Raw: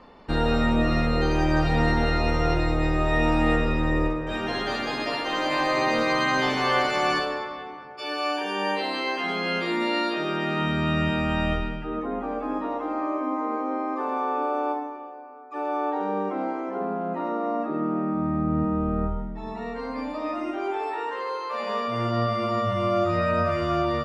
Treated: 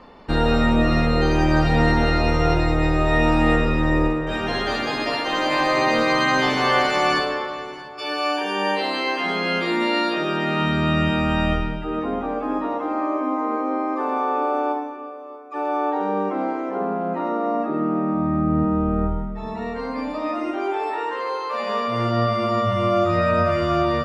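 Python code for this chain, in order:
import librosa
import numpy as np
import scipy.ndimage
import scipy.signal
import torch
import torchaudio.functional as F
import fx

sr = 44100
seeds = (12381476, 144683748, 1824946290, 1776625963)

y = x + 10.0 ** (-18.0 / 20.0) * np.pad(x, (int(633 * sr / 1000.0), 0))[:len(x)]
y = y * librosa.db_to_amplitude(4.0)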